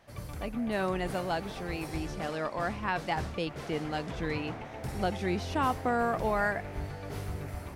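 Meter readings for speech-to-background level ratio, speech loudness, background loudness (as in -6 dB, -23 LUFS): 7.0 dB, -33.5 LUFS, -40.5 LUFS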